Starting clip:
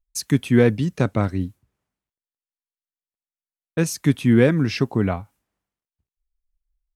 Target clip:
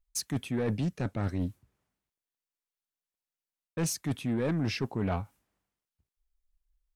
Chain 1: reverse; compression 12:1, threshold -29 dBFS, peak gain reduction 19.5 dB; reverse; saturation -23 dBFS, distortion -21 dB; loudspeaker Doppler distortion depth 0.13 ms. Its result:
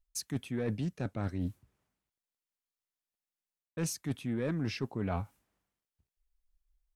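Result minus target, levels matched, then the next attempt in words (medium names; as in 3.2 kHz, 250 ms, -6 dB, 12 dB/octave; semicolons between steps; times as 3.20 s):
compression: peak gain reduction +5.5 dB
reverse; compression 12:1, threshold -23 dBFS, peak gain reduction 14 dB; reverse; saturation -23 dBFS, distortion -13 dB; loudspeaker Doppler distortion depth 0.13 ms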